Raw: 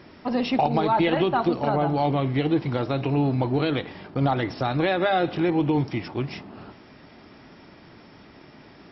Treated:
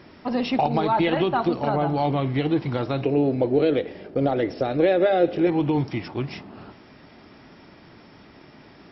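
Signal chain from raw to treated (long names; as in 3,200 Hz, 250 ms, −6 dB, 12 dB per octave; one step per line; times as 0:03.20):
0:03.04–0:05.47: octave-band graphic EQ 125/500/1,000/4,000 Hz −6/+11/−11/−5 dB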